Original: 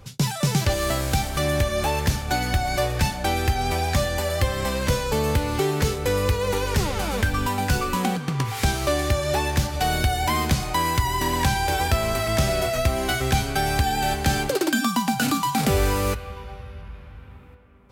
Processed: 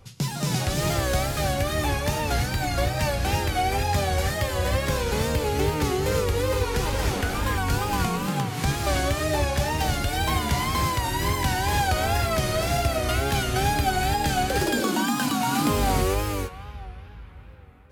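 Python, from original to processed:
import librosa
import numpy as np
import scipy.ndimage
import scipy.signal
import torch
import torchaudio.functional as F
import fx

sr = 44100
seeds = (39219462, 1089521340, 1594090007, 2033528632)

y = fx.rev_gated(x, sr, seeds[0], gate_ms=360, shape='rising', drr_db=-1.5)
y = fx.wow_flutter(y, sr, seeds[1], rate_hz=2.1, depth_cents=100.0)
y = y * 10.0 ** (-5.0 / 20.0)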